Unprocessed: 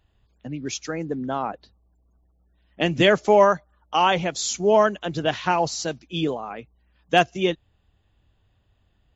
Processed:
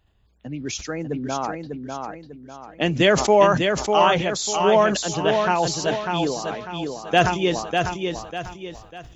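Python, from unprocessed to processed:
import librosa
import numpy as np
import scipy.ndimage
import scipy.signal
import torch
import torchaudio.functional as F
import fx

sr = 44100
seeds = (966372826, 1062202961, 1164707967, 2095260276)

y = fx.echo_feedback(x, sr, ms=597, feedback_pct=37, wet_db=-5.0)
y = fx.sustainer(y, sr, db_per_s=73.0)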